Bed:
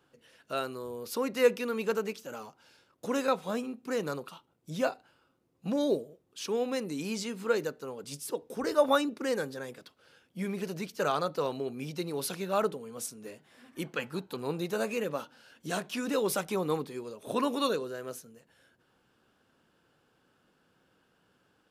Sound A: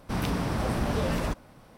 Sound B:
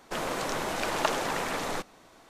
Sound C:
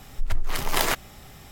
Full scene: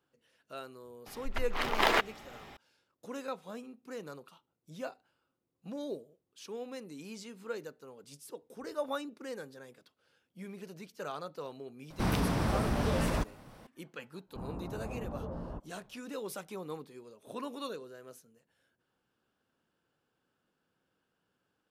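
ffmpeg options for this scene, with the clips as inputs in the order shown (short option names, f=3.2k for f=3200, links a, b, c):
-filter_complex "[1:a]asplit=2[a][b];[0:a]volume=-11dB[c];[3:a]acrossover=split=230 4100:gain=0.251 1 0.126[d][e][f];[d][e][f]amix=inputs=3:normalize=0[g];[a]alimiter=limit=-19dB:level=0:latency=1:release=438[h];[b]lowpass=f=1.1k:w=0.5412,lowpass=f=1.1k:w=1.3066[i];[g]atrim=end=1.51,asetpts=PTS-STARTPTS,volume=-0.5dB,afade=t=in:d=0.004:c=hsin,afade=t=out:st=1.506:d=0.004:c=hsin,adelay=1060[j];[h]atrim=end=1.77,asetpts=PTS-STARTPTS,volume=-0.5dB,afade=t=in:d=0.004:c=hsin,afade=t=out:st=1.766:d=0.004:c=hsin,adelay=11900[k];[i]atrim=end=1.77,asetpts=PTS-STARTPTS,volume=-12.5dB,afade=t=in:d=0.1,afade=t=out:st=1.67:d=0.1,adelay=14260[l];[c][j][k][l]amix=inputs=4:normalize=0"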